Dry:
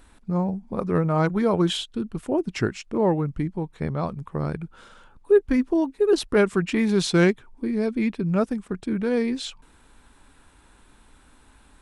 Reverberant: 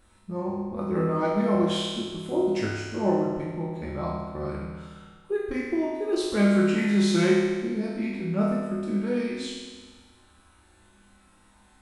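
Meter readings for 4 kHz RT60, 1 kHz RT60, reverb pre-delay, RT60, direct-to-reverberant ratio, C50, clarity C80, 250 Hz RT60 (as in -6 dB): 1.5 s, 1.5 s, 4 ms, 1.5 s, -6.5 dB, -0.5 dB, 2.0 dB, 1.5 s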